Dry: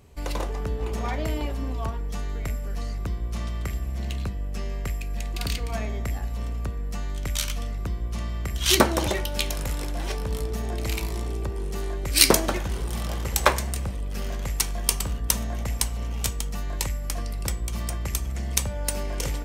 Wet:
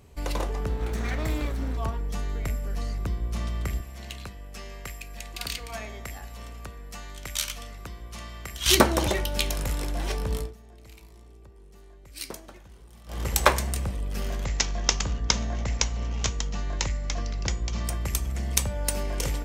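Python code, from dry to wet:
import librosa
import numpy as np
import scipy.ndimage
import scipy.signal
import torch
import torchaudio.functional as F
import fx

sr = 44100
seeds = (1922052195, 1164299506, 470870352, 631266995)

y = fx.lower_of_two(x, sr, delay_ms=0.51, at=(0.69, 1.77))
y = fx.low_shelf(y, sr, hz=490.0, db=-12.0, at=(3.81, 8.66))
y = fx.resample_bad(y, sr, factor=3, down='none', up='filtered', at=(14.45, 17.85))
y = fx.edit(y, sr, fx.fade_down_up(start_s=10.37, length_s=2.86, db=-21.0, fade_s=0.17), tone=tone)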